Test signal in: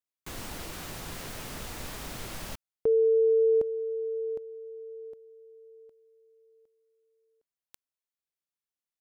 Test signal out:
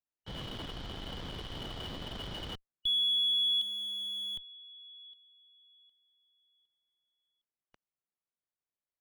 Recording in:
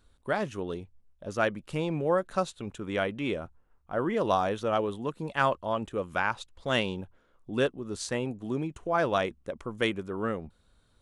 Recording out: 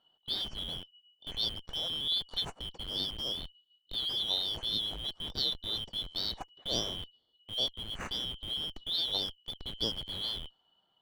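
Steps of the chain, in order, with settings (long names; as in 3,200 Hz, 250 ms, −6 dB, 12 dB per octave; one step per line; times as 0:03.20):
band-splitting scrambler in four parts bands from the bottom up 3412
low-pass that shuts in the quiet parts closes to 2,900 Hz, open at −22.5 dBFS
in parallel at −10 dB: comparator with hysteresis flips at −35.5 dBFS
on the sum: high-shelf EQ 2,200 Hz −10.5 dB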